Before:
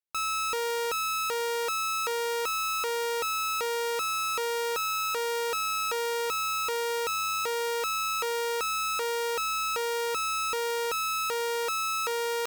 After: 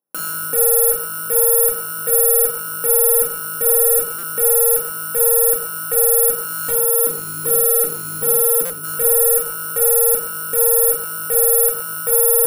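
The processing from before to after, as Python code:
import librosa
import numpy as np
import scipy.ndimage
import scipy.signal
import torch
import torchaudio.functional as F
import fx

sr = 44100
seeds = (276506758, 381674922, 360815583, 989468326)

y = np.r_[np.sort(x[:len(x) // 16 * 16].reshape(-1, 16), axis=1).ravel(), x[len(x) // 16 * 16:]]
y = scipy.signal.sosfilt(scipy.signal.butter(2, 230.0, 'highpass', fs=sr, output='sos'), y)
y = fx.band_shelf(y, sr, hz=3500.0, db=-13.0, octaves=1.7)
y = fx.spec_box(y, sr, start_s=6.72, length_s=2.12, low_hz=450.0, high_hz=9500.0, gain_db=-11)
y = fx.tilt_shelf(y, sr, db=9.0, hz=850.0)
y = fx.rider(y, sr, range_db=10, speed_s=0.5)
y = fx.fold_sine(y, sr, drive_db=10, ceiling_db=-17.5)
y = y + 10.0 ** (-13.0 / 20.0) * np.pad(y, (int(121 * sr / 1000.0), 0))[:len(y)]
y = fx.room_shoebox(y, sr, seeds[0], volume_m3=540.0, walls='furnished', distance_m=2.1)
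y = (np.kron(scipy.signal.resample_poly(y, 1, 4), np.eye(4)[0]) * 4)[:len(y)]
y = fx.buffer_glitch(y, sr, at_s=(4.18, 8.65), block=256, repeats=8)
y = F.gain(torch.from_numpy(y), -6.5).numpy()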